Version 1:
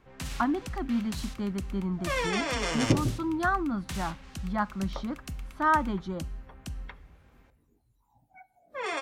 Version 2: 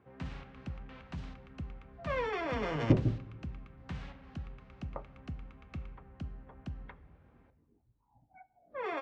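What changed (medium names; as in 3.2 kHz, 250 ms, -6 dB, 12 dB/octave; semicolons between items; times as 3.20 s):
speech: muted; first sound: add high-pass 68 Hz 12 dB/octave; master: add tape spacing loss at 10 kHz 38 dB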